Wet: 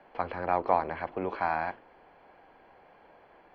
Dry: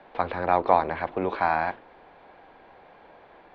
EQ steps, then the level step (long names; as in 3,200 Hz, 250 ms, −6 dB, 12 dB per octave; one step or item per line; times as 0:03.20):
Butterworth band-reject 3,700 Hz, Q 7.1
−5.5 dB